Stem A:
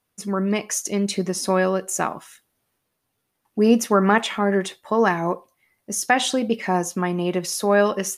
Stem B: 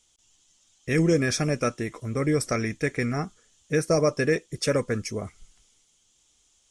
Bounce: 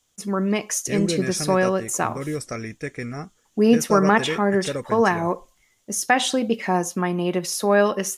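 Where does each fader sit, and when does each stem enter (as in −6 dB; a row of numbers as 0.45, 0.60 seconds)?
0.0, −4.5 decibels; 0.00, 0.00 seconds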